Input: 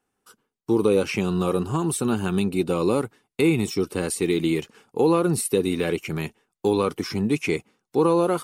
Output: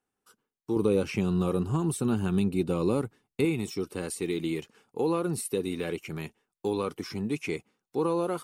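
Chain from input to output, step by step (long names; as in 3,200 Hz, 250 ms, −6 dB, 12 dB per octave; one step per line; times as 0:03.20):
0:00.76–0:03.45: low-shelf EQ 260 Hz +9 dB
level −8 dB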